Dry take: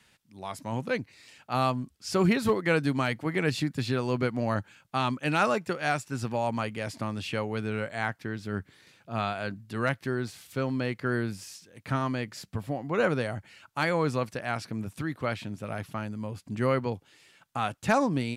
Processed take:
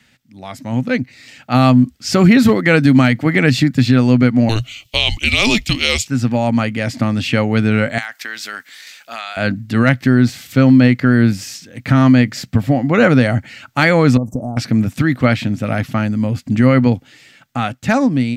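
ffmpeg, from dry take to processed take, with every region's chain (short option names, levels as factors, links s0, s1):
-filter_complex "[0:a]asettb=1/sr,asplit=3[s0][s1][s2];[s0]atrim=end=4.494[s3];[s1]atrim=start=4.49:end=6.07,asetpts=PTS-STARTPTS,afade=t=in:d=0.004:c=qsin,afade=t=out:st=1.576:d=0.004:c=qsin,afreqshift=-220,highshelf=f=2100:t=q:w=3:g=11.5[s4];[s2]atrim=start=6.066[s5];[s3][s4]acrossfade=d=0.004:c1=hsin:c2=qsin[s6];[s6][s5]acrossfade=d=0.004:c1=qsin:c2=hsin,asettb=1/sr,asplit=3[s7][s8][s9];[s7]atrim=end=7.984[s10];[s8]atrim=start=7.98:end=9.37,asetpts=PTS-STARTPTS,afade=t=in:d=0.004:c=qsin,afade=t=out:st=1.386:d=0.004:c=qsin,highpass=920,highshelf=f=3600:g=11,acompressor=threshold=0.0141:ratio=8:attack=3.2:release=140:knee=1:detection=peak[s11];[s9]atrim=start=9.366[s12];[s10][s11]acrossfade=d=0.004:c1=hsin:c2=qsin[s13];[s13][s12]acrossfade=d=0.004:c1=qsin:c2=hsin,asettb=1/sr,asplit=3[s14][s15][s16];[s14]atrim=end=14.174[s17];[s15]atrim=start=14.17:end=14.57,asetpts=PTS-STARTPTS,afade=t=in:d=0.004:c=qsin,afade=t=out:st=0.396:d=0.004:c=qsin,acompressor=threshold=0.0126:ratio=8:attack=3.2:release=140:knee=1:detection=peak,asuperstop=centerf=2600:order=12:qfactor=0.5,tiltshelf=f=1100:g=4.5[s18];[s16]atrim=start=14.566[s19];[s17][s18]acrossfade=d=0.004:c1=hsin:c2=qsin[s20];[s20][s19]acrossfade=d=0.004:c1=qsin:c2=hsin,equalizer=f=125:t=o:w=0.33:g=6,equalizer=f=250:t=o:w=0.33:g=10,equalizer=f=400:t=o:w=0.33:g=-6,equalizer=f=1000:t=o:w=0.33:g=-8,equalizer=f=2000:t=o:w=0.33:g=4,equalizer=f=10000:t=o:w=0.33:g=-10,dynaudnorm=f=120:g=21:m=2.66,alimiter=level_in=2.66:limit=0.891:release=50:level=0:latency=1,volume=0.891"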